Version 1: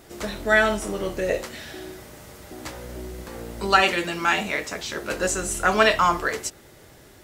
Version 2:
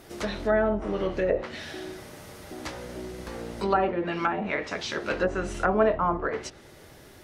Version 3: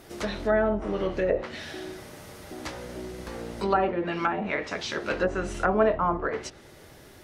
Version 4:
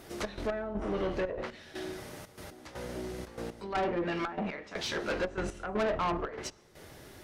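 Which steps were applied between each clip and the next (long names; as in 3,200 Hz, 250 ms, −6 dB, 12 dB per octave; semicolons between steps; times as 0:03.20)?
parametric band 7,500 Hz −6 dB 0.26 octaves; mains-hum notches 60/120 Hz; treble cut that deepens with the level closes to 760 Hz, closed at −18.5 dBFS
no processing that can be heard
gate pattern "xx.x..xx" 120 BPM −12 dB; tube saturation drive 26 dB, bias 0.3; on a send at −23 dB: convolution reverb RT60 1.5 s, pre-delay 35 ms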